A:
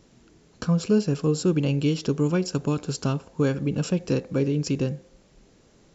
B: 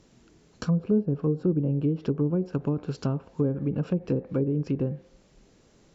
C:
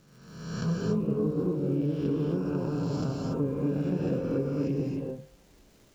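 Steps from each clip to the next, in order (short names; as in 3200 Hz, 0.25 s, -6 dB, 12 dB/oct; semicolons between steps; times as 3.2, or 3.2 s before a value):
treble ducked by the level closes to 520 Hz, closed at -18.5 dBFS; gain -2 dB
spectral swells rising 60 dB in 1.21 s; crackle 420/s -46 dBFS; non-linear reverb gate 0.31 s rising, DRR -0.5 dB; gain -7.5 dB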